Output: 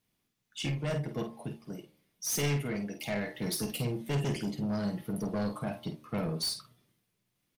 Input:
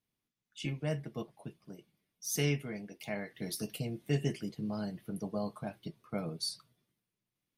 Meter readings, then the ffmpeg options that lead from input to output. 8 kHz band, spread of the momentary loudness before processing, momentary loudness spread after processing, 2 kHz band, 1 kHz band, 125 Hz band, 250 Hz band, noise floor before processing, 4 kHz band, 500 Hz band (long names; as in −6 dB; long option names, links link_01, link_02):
+4.5 dB, 16 LU, 10 LU, +3.5 dB, +5.5 dB, +3.5 dB, +4.0 dB, below −85 dBFS, +4.5 dB, +3.0 dB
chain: -filter_complex "[0:a]bandreject=frequency=76.1:width_type=h:width=4,bandreject=frequency=152.2:width_type=h:width=4,bandreject=frequency=228.3:width_type=h:width=4,bandreject=frequency=304.4:width_type=h:width=4,bandreject=frequency=380.5:width_type=h:width=4,bandreject=frequency=456.6:width_type=h:width=4,bandreject=frequency=532.7:width_type=h:width=4,bandreject=frequency=608.8:width_type=h:width=4,bandreject=frequency=684.9:width_type=h:width=4,bandreject=frequency=761:width_type=h:width=4,bandreject=frequency=837.1:width_type=h:width=4,bandreject=frequency=913.2:width_type=h:width=4,bandreject=frequency=989.3:width_type=h:width=4,bandreject=frequency=1065.4:width_type=h:width=4,bandreject=frequency=1141.5:width_type=h:width=4,bandreject=frequency=1217.6:width_type=h:width=4,bandreject=frequency=1293.7:width_type=h:width=4,bandreject=frequency=1369.8:width_type=h:width=4,asoftclip=type=tanh:threshold=-36dB,asplit=2[link_01][link_02];[link_02]adelay=49,volume=-8.5dB[link_03];[link_01][link_03]amix=inputs=2:normalize=0,volume=8dB"